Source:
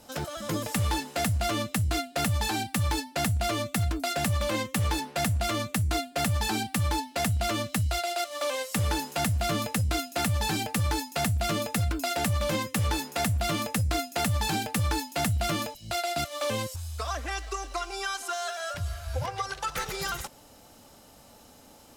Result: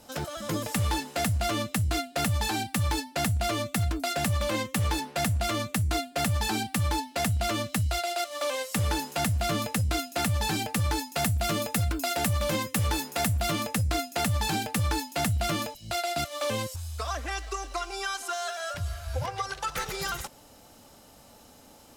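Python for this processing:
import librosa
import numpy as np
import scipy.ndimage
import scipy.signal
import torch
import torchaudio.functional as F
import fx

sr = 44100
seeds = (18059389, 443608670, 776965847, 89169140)

y = fx.high_shelf(x, sr, hz=10000.0, db=5.0, at=(11.16, 13.52))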